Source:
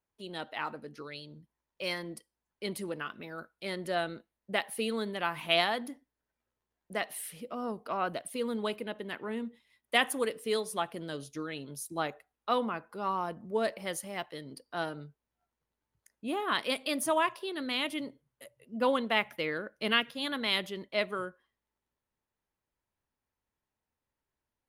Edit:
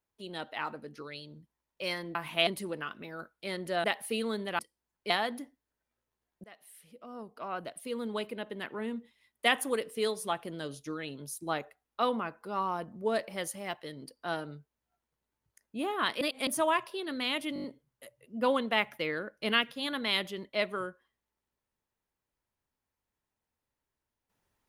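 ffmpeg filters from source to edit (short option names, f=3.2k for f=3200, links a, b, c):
-filter_complex "[0:a]asplit=14[a][b][c][d][e][f][g][h][i][j][k][l][m][n];[a]atrim=end=2.152[o];[b]atrim=start=5.268:end=5.592[p];[c]atrim=start=2.658:end=4.032[q];[d]atrim=start=4.518:end=5.272[r];[e]atrim=start=2.148:end=2.662[s];[f]atrim=start=5.588:end=6.93,asetpts=PTS-STARTPTS,afade=t=out:st=1.338:d=0.004:c=hsin:silence=0.0668344[t];[g]atrim=start=6.93:end=16.702,asetpts=PTS-STARTPTS,afade=t=in:d=2.13:silence=0.0668344[u];[h]atrim=start=16.698:end=16.962,asetpts=PTS-STARTPTS,areverse[v];[i]atrim=start=16.958:end=18.052[w];[j]atrim=start=18.028:end=18.052[x];[k]atrim=start=18.028:end=18.052[y];[l]atrim=start=18.028:end=18.052[z];[m]atrim=start=18.028:end=18.052[aa];[n]atrim=start=18.028[ab];[o][p]acrossfade=d=0.004:c1=hsin:c2=hsin[ac];[ac][q]acrossfade=d=0.004:c1=hsin:c2=hsin[ad];[ad][r]acrossfade=d=0.004:c1=hsin:c2=hsin[ae];[ae][s]acrossfade=d=0.004:c1=hsin:c2=hsin[af];[t][u]concat=n=2:v=0:a=1[ag];[af][ag]acrossfade=d=0.004:c1=hsin:c2=hsin[ah];[ah][v]acrossfade=d=0.004:c1=hsin:c2=hsin[ai];[ai][w]acrossfade=d=0.004:c1=hsin:c2=hsin[aj];[aj][x]acrossfade=d=0.004:c1=hsin:c2=hsin[ak];[ak][y]acrossfade=d=0.004:c1=hsin:c2=hsin[al];[al][z]acrossfade=d=0.004:c1=hsin:c2=hsin[am];[am][aa]acrossfade=d=0.004:c1=hsin:c2=hsin[an];[an][ab]acrossfade=d=0.004:c1=hsin:c2=hsin"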